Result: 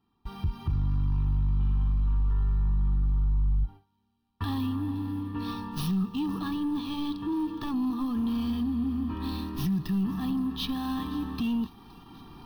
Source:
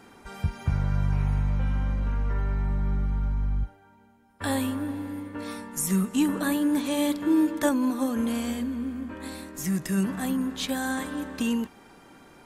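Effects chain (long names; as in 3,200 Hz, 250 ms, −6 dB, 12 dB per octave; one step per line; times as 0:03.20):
running median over 5 samples
camcorder AGC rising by 5.8 dB per second
0:05.51–0:07.74: thirty-one-band graphic EQ 250 Hz −6 dB, 2,000 Hz −4 dB, 12,500 Hz −11 dB
soft clipping −22.5 dBFS, distortion −15 dB
Butterworth band-reject 1,500 Hz, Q 4.3
low-shelf EQ 170 Hz +7.5 dB
noise gate with hold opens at −37 dBFS
delay with a high-pass on its return 518 ms, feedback 63%, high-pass 4,300 Hz, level −17 dB
brickwall limiter −20.5 dBFS, peak gain reduction 4.5 dB
phaser with its sweep stopped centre 2,100 Hz, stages 6
every ending faded ahead of time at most 500 dB per second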